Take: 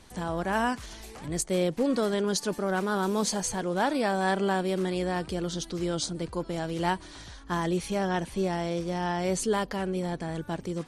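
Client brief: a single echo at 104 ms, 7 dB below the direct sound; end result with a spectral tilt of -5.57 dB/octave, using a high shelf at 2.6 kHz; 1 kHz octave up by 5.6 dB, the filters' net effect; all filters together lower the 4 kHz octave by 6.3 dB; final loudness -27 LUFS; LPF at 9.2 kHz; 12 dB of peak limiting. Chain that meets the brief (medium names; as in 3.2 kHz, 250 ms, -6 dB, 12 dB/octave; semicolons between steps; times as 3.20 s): low-pass 9.2 kHz; peaking EQ 1 kHz +8 dB; treble shelf 2.6 kHz -5 dB; peaking EQ 4 kHz -4 dB; peak limiter -22.5 dBFS; delay 104 ms -7 dB; trim +4.5 dB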